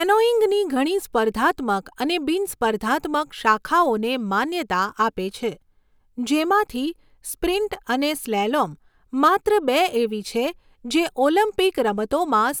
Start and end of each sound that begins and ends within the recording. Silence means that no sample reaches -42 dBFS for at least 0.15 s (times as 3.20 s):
6.18–6.92 s
7.24–8.75 s
9.13–10.55 s